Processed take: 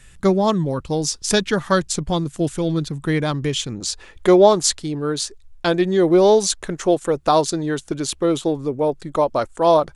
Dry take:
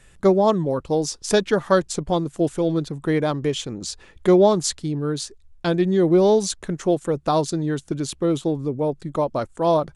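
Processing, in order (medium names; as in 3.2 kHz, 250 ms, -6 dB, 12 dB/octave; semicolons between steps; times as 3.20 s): peaking EQ 530 Hz -8.5 dB 2.3 oct, from 3.80 s 150 Hz; trim +6 dB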